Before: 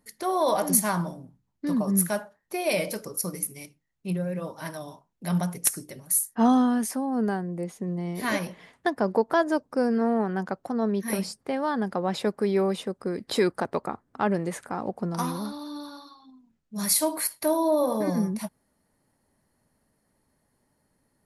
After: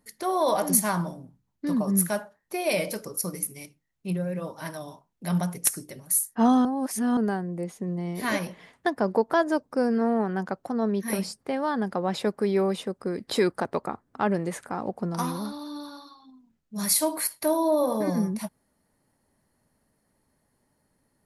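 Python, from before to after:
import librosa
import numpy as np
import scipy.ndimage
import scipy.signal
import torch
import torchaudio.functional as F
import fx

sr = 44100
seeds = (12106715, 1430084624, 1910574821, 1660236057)

y = fx.edit(x, sr, fx.reverse_span(start_s=6.65, length_s=0.52), tone=tone)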